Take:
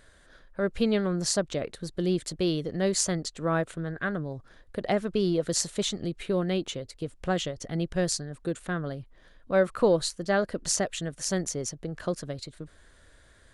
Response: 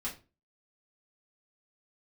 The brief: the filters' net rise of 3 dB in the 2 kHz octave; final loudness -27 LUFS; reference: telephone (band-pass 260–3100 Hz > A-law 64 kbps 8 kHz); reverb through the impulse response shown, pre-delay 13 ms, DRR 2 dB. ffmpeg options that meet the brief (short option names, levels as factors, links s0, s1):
-filter_complex "[0:a]equalizer=f=2000:t=o:g=4.5,asplit=2[s0][s1];[1:a]atrim=start_sample=2205,adelay=13[s2];[s1][s2]afir=irnorm=-1:irlink=0,volume=0.631[s3];[s0][s3]amix=inputs=2:normalize=0,highpass=260,lowpass=3100,volume=1.33" -ar 8000 -c:a pcm_alaw